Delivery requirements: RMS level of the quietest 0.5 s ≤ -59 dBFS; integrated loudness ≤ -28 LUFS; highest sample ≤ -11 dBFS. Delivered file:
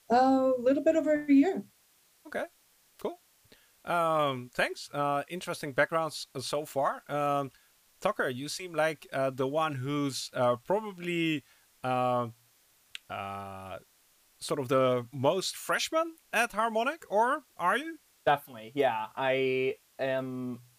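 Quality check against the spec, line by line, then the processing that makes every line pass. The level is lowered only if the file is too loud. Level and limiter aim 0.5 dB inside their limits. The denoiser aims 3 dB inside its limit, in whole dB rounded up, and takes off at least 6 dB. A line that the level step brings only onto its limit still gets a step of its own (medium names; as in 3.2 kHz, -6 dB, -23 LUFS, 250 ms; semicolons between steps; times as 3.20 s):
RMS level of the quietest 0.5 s -66 dBFS: pass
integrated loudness -30.0 LUFS: pass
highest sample -12.5 dBFS: pass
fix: none needed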